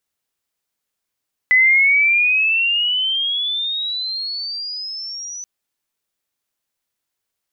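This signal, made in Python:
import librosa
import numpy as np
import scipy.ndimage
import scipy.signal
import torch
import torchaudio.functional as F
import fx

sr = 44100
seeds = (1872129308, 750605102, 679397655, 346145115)

y = fx.chirp(sr, length_s=3.93, from_hz=2000.0, to_hz=6000.0, law='logarithmic', from_db=-9.0, to_db=-28.0)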